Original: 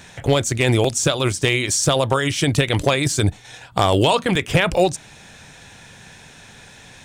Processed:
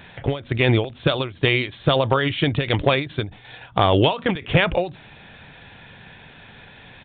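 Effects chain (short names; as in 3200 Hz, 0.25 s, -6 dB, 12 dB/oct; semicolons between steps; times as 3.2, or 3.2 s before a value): downsampling 8000 Hz; ending taper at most 160 dB/s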